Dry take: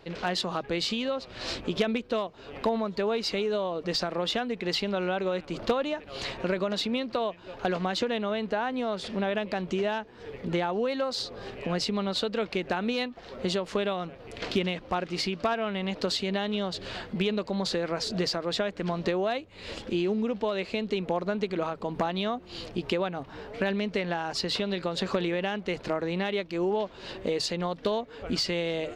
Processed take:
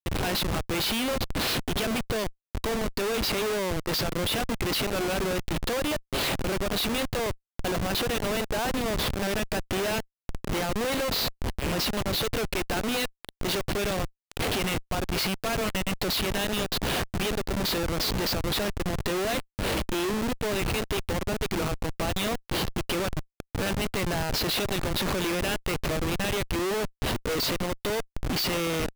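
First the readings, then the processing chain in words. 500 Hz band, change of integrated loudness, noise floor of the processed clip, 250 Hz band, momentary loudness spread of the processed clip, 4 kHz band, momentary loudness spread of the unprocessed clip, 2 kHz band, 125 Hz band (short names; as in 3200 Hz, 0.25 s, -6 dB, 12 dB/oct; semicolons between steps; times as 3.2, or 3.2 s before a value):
-1.0 dB, +2.0 dB, -78 dBFS, +0.5 dB, 4 LU, +3.5 dB, 5 LU, +4.0 dB, +4.5 dB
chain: weighting filter D; Schmitt trigger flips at -29 dBFS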